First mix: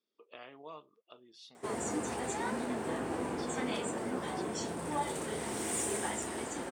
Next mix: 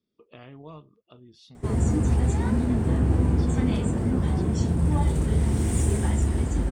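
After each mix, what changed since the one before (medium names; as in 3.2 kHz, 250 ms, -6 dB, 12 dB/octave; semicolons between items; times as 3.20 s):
master: remove high-pass 500 Hz 12 dB/octave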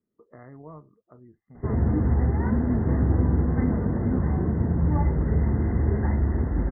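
master: add brick-wall FIR low-pass 2.1 kHz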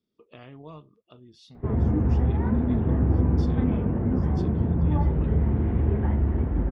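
background: add Gaussian low-pass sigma 4.3 samples; master: remove brick-wall FIR low-pass 2.1 kHz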